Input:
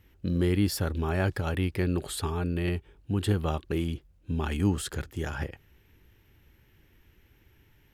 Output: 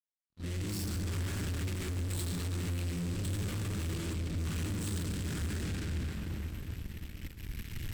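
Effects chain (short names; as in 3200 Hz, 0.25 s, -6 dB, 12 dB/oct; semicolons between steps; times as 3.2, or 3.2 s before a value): opening faded in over 1.69 s; recorder AGC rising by 6.7 dB/s; shoebox room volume 170 m³, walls hard, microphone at 2.6 m; fuzz box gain 30 dB, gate -29 dBFS; bell 8000 Hz +6.5 dB 0.23 oct; expander -18 dBFS; passive tone stack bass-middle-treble 6-0-2; soft clip -32 dBFS, distortion -13 dB; diffused feedback echo 0.595 s, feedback 47%, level -14 dB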